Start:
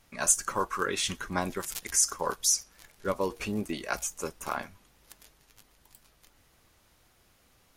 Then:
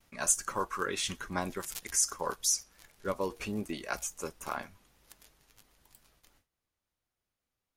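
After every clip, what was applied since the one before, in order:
noise gate with hold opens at −52 dBFS
level −3.5 dB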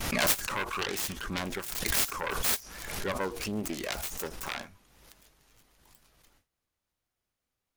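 phase distortion by the signal itself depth 0.84 ms
background raised ahead of every attack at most 42 dB per second
level +1.5 dB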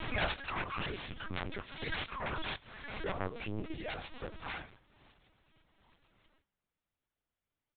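single-tap delay 171 ms −24 dB
linear-prediction vocoder at 8 kHz pitch kept
level −4.5 dB

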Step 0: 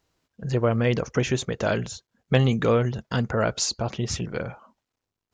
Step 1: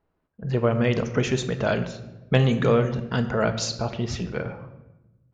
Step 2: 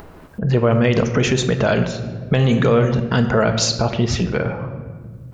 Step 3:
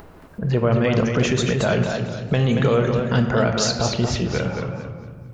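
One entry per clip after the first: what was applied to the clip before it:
low-pass that shuts in the quiet parts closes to 1,400 Hz, open at −17 dBFS; on a send at −8 dB: convolution reverb RT60 1.0 s, pre-delay 5 ms
in parallel at +2.5 dB: upward compression, threshold −22 dBFS; on the sum: brickwall limiter −8 dBFS, peak gain reduction 9.5 dB; level +1.5 dB
feedback echo with a swinging delay time 226 ms, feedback 33%, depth 96 cents, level −6 dB; level −3.5 dB

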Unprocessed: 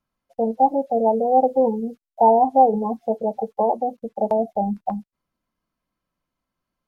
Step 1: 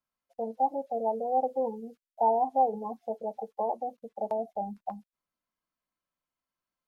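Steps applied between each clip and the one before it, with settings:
low-shelf EQ 390 Hz −10.5 dB
level −7.5 dB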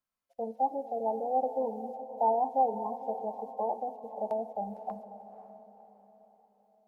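feedback delay with all-pass diffusion 521 ms, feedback 42%, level −12.5 dB
on a send at −15 dB: convolution reverb RT60 3.7 s, pre-delay 7 ms
on the sum: level −2 dB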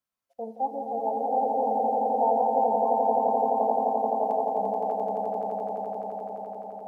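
high-pass filter 44 Hz
on a send: echo that builds up and dies away 86 ms, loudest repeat 8, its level −5 dB

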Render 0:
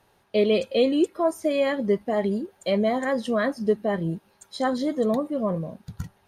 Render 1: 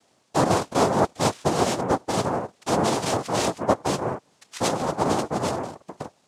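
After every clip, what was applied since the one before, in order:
cochlear-implant simulation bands 2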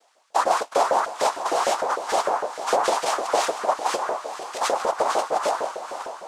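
brickwall limiter −13 dBFS, peak gain reduction 8 dB
feedback delay with all-pass diffusion 496 ms, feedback 52%, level −10 dB
auto-filter high-pass saw up 6.6 Hz 460–1,600 Hz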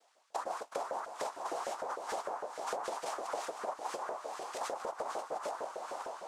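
dynamic equaliser 3,400 Hz, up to −4 dB, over −41 dBFS, Q 0.71
downward compressor 5 to 1, threshold −28 dBFS, peak gain reduction 11.5 dB
level −7.5 dB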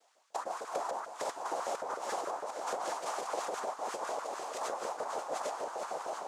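delay that plays each chunk backwards 627 ms, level −2.5 dB
high-pass filter 78 Hz
parametric band 6,800 Hz +3 dB 0.36 octaves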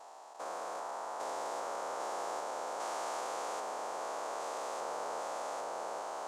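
spectrum averaged block by block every 400 ms
level +1 dB

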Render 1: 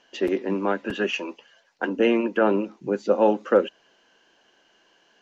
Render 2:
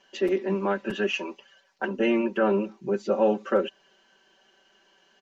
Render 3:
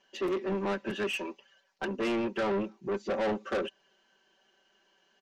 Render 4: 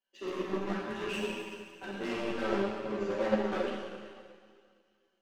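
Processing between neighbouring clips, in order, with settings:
comb filter 5.2 ms, depth 95%; in parallel at −2 dB: brickwall limiter −14.5 dBFS, peak gain reduction 9.5 dB; on the sum: level −9 dB
soft clipping −28 dBFS, distortion −7 dB; expander for the loud parts 1.5 to 1, over −45 dBFS; level +1.5 dB
four-comb reverb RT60 2.8 s, combs from 29 ms, DRR −4 dB; power curve on the samples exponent 1.4; multi-voice chorus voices 6, 0.59 Hz, delay 13 ms, depth 3.9 ms

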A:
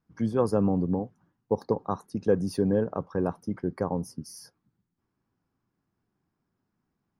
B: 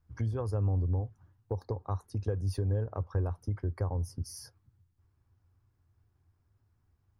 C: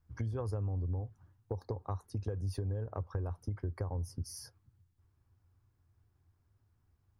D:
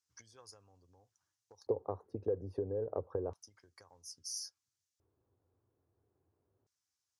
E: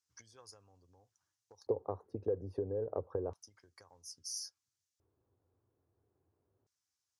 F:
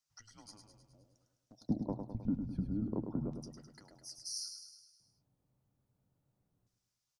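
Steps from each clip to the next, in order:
downward compressor 3 to 1, threshold −35 dBFS, peak gain reduction 13.5 dB; low shelf with overshoot 130 Hz +12.5 dB, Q 3
downward compressor, threshold −31 dBFS, peak gain reduction 6.5 dB; level −1 dB
auto-filter band-pass square 0.3 Hz 460–6,100 Hz; level +9.5 dB
no processing that can be heard
frequency shifter −220 Hz; on a send: repeating echo 104 ms, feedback 57%, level −7 dB

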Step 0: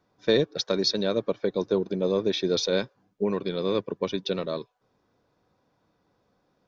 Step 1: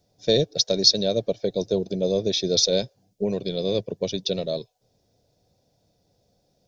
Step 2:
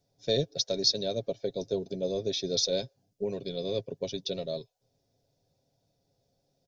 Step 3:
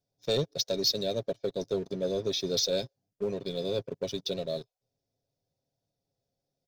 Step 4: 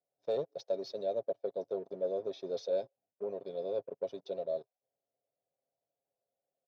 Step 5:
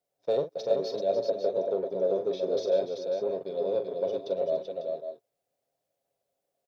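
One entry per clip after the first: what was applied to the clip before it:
drawn EQ curve 110 Hz 0 dB, 310 Hz −10 dB, 680 Hz −2 dB, 1,100 Hz −24 dB, 5,200 Hz +4 dB; level +7.5 dB
comb filter 7.4 ms, depth 39%; level −8 dB
leveller curve on the samples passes 2; level −6.5 dB
resonant band-pass 640 Hz, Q 2
multi-tap delay 42/289/385/544/547/569 ms −9.5/−13.5/−4.5/−16.5/−11.5/−18 dB; level +6 dB

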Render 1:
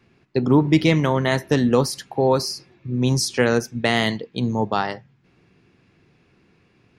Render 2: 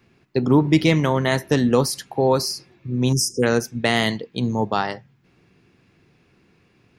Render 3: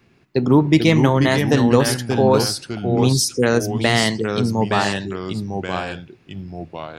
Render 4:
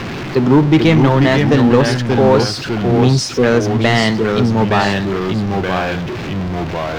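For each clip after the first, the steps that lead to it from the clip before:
time-frequency box erased 0:03.13–0:03.43, 500–4,900 Hz; high-shelf EQ 10,000 Hz +8.5 dB
delay with pitch and tempo change per echo 396 ms, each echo −2 semitones, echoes 2, each echo −6 dB; level +2 dB
converter with a step at zero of −21 dBFS; high-frequency loss of the air 130 metres; leveller curve on the samples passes 1

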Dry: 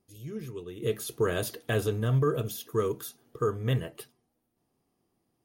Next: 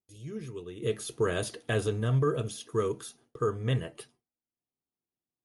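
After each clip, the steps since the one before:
noise gate with hold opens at −53 dBFS
Chebyshev low-pass filter 11,000 Hz, order 8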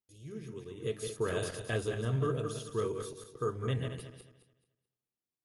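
feedback delay that plays each chunk backwards 108 ms, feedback 51%, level −5 dB
level −5.5 dB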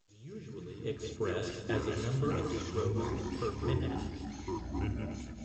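flutter between parallel walls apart 9.1 metres, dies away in 0.21 s
delay with pitch and tempo change per echo 171 ms, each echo −4 semitones, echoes 3
level −2.5 dB
A-law companding 128 kbit/s 16,000 Hz

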